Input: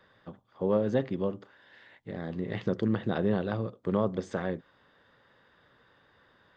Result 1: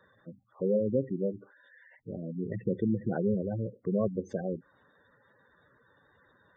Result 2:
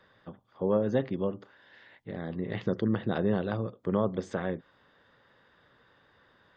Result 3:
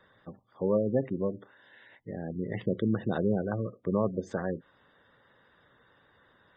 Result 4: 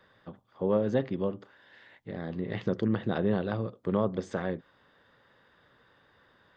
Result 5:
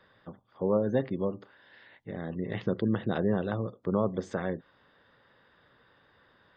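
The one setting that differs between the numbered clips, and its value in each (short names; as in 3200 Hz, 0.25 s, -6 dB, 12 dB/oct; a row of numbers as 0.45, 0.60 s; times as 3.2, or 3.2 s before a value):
spectral gate, under each frame's peak: -10, -45, -20, -60, -35 dB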